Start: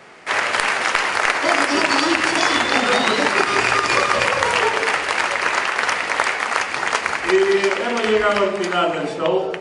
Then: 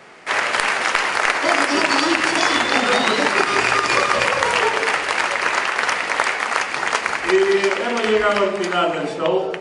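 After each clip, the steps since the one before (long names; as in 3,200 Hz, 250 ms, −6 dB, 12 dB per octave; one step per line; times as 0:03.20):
parametric band 89 Hz −5.5 dB 0.52 octaves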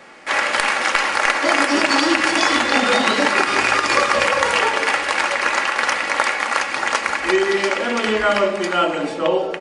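comb filter 3.6 ms, depth 43%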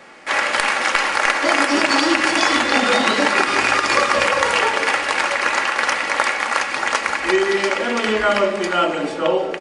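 repeating echo 469 ms, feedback 57%, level −18 dB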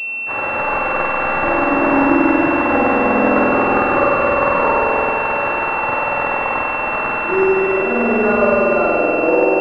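spring reverb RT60 3.7 s, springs 47 ms, chirp 70 ms, DRR −7 dB
switching amplifier with a slow clock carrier 2,700 Hz
level −3 dB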